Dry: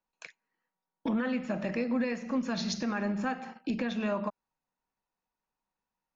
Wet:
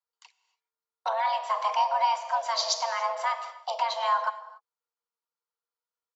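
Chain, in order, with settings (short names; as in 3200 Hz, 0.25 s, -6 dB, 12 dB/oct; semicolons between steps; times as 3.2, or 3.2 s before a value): gate -42 dBFS, range -13 dB; graphic EQ 125/250/500/1000/2000/4000 Hz -7/-8/+9/-4/-6/+7 dB; frequency shift +450 Hz; harmoniser -4 st -13 dB; on a send: reverb, pre-delay 52 ms, DRR 15.5 dB; on the sum: gain +4.5 dB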